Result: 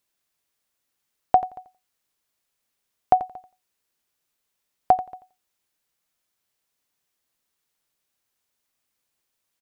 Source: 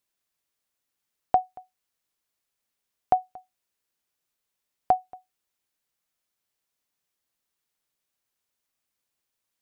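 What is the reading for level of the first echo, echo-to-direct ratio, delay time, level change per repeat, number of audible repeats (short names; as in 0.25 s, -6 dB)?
-14.0 dB, -14.0 dB, 87 ms, -16.0 dB, 2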